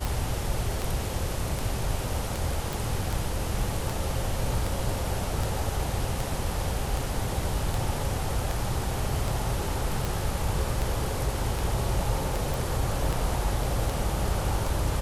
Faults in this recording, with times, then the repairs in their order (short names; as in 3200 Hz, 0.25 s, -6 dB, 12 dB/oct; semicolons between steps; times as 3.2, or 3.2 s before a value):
tick 78 rpm
2.73 pop
12.54 pop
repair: de-click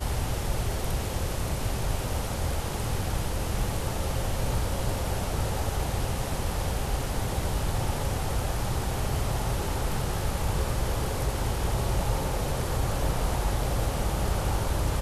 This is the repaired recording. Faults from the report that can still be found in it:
none